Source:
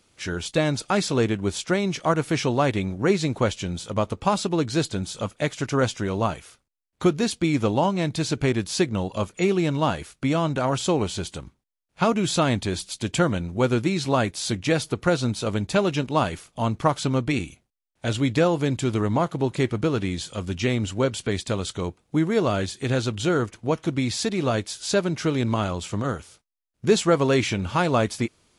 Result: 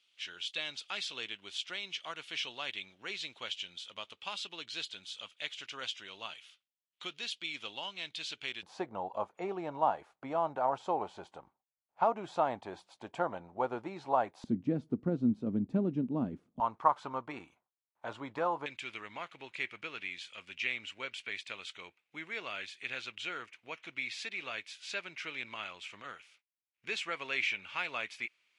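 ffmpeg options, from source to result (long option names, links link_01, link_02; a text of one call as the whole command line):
ffmpeg -i in.wav -af "asetnsamples=nb_out_samples=441:pad=0,asendcmd='8.63 bandpass f 820;14.44 bandpass f 240;16.6 bandpass f 970;18.66 bandpass f 2400',bandpass=frequency=3100:width_type=q:width=3.5:csg=0" out.wav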